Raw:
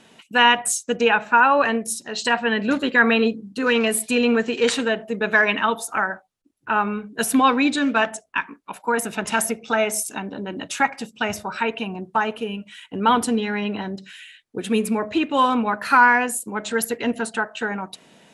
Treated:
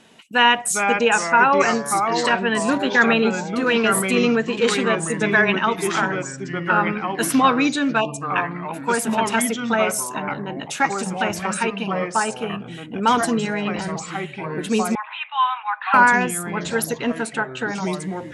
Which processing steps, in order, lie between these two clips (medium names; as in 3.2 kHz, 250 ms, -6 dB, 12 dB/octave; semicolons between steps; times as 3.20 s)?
ever faster or slower copies 338 ms, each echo -3 st, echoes 3, each echo -6 dB; 8.00–8.21 s: spectral selection erased 1.2–2.4 kHz; 14.95–15.94 s: Chebyshev band-pass 800–3700 Hz, order 5